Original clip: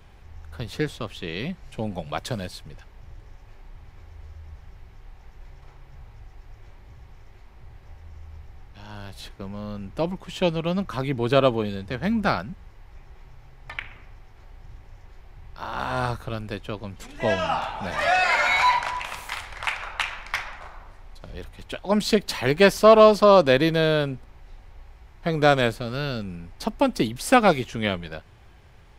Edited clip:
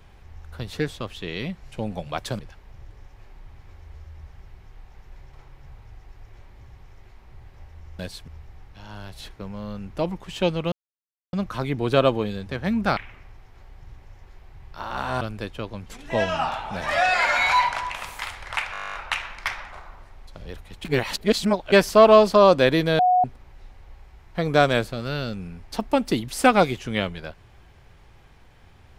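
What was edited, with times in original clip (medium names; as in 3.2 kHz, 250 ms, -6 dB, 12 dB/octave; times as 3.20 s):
2.39–2.68 s: move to 8.28 s
10.72 s: insert silence 0.61 s
12.36–13.79 s: delete
16.03–16.31 s: delete
19.82 s: stutter 0.02 s, 12 plays
21.73–22.60 s: reverse
23.87–24.12 s: bleep 730 Hz -14.5 dBFS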